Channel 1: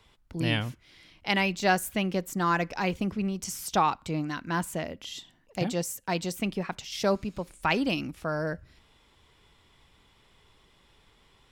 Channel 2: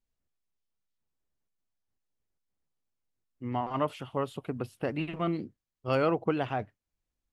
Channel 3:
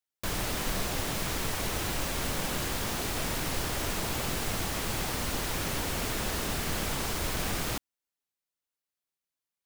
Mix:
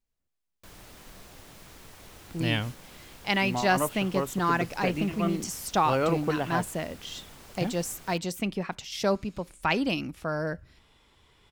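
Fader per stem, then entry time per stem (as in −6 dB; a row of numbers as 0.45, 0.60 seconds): 0.0, +0.5, −17.5 decibels; 2.00, 0.00, 0.40 seconds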